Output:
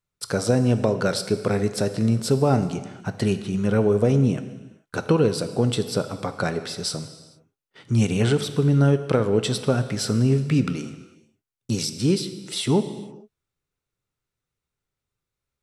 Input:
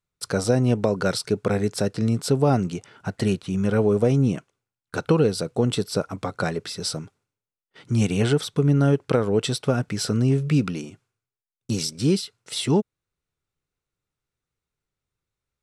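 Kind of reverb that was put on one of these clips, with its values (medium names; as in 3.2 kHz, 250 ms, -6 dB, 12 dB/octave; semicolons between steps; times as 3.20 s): gated-style reverb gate 480 ms falling, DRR 9.5 dB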